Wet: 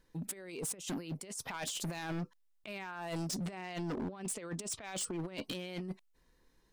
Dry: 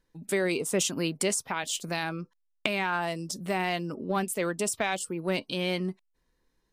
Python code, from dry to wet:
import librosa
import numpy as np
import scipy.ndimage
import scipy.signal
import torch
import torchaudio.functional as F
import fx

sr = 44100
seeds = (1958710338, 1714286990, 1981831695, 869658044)

y = fx.lowpass(x, sr, hz=8700.0, slope=24, at=(3.36, 5.44))
y = fx.over_compress(y, sr, threshold_db=-35.0, ratio=-0.5)
y = np.clip(y, -10.0 ** (-32.5 / 20.0), 10.0 ** (-32.5 / 20.0))
y = F.gain(torch.from_numpy(y), -1.5).numpy()